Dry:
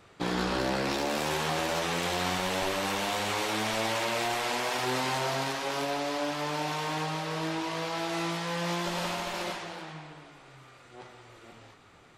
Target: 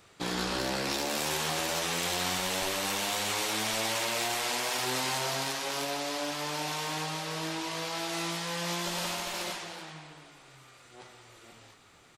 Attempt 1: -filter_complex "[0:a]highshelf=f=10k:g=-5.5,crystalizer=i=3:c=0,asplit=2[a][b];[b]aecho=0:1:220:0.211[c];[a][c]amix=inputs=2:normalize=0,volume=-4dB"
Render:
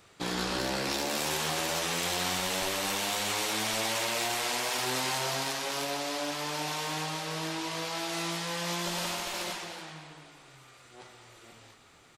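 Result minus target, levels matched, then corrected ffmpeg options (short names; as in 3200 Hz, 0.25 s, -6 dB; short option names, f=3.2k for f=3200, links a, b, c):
echo-to-direct +11.5 dB
-filter_complex "[0:a]highshelf=f=10k:g=-5.5,crystalizer=i=3:c=0,asplit=2[a][b];[b]aecho=0:1:220:0.0562[c];[a][c]amix=inputs=2:normalize=0,volume=-4dB"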